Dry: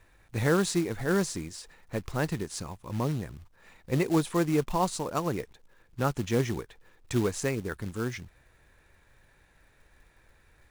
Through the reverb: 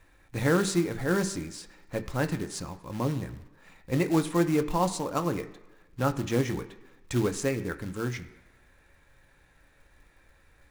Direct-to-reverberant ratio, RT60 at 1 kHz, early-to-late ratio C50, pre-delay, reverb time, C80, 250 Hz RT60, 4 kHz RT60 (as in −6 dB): 7.0 dB, 1.2 s, 14.0 dB, 3 ms, 1.2 s, 16.0 dB, 1.0 s, 1.2 s